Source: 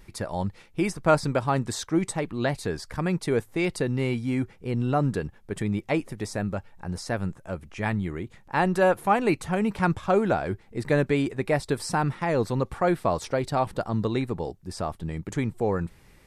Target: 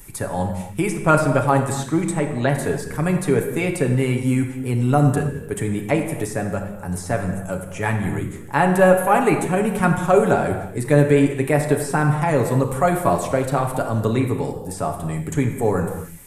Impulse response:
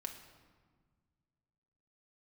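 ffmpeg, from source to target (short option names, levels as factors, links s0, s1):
-filter_complex "[0:a]acrossover=split=120|3600[s0][s1][s2];[s2]acompressor=threshold=0.00178:ratio=6[s3];[s0][s1][s3]amix=inputs=3:normalize=0,aexciter=amount=7.9:drive=5.2:freq=6800[s4];[1:a]atrim=start_sample=2205,afade=t=out:st=0.25:d=0.01,atrim=end_sample=11466,asetrate=28665,aresample=44100[s5];[s4][s5]afir=irnorm=-1:irlink=0,volume=2"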